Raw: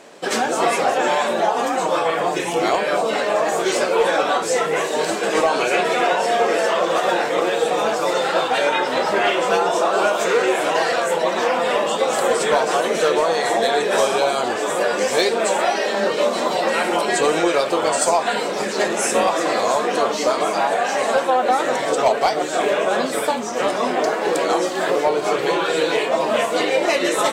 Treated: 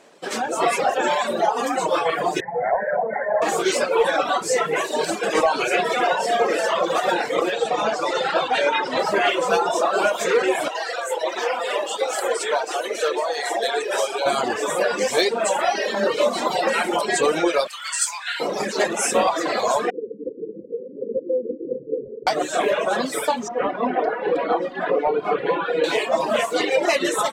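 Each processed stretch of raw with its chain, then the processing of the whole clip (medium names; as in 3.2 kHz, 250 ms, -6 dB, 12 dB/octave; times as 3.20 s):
2.40–3.42 s: steep low-pass 2 kHz 96 dB/octave + static phaser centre 1.2 kHz, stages 6
7.51–8.99 s: low-pass 6.8 kHz + hum notches 60/120/180/240/300/360/420/480/540 Hz
10.68–14.26 s: ladder high-pass 290 Hz, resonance 30% + tilt shelf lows -3.5 dB, about 710 Hz + band-stop 1.1 kHz, Q 15
17.67–18.40 s: high-pass 1.4 kHz 24 dB/octave + doubling 28 ms -9 dB
19.90–22.27 s: Chebyshev low-pass 520 Hz, order 10 + tilt EQ +2.5 dB/octave
23.48–25.84 s: distance through air 470 m + comb 4.1 ms, depth 37%
whole clip: reverb removal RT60 1.9 s; level rider; trim -7 dB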